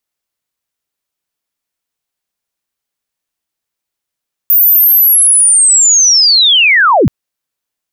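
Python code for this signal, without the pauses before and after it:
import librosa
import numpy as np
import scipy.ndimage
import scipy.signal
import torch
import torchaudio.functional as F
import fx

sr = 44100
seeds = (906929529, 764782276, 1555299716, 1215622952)

y = fx.chirp(sr, length_s=2.58, from_hz=15000.0, to_hz=73.0, law='linear', from_db=-4.0, to_db=-4.5)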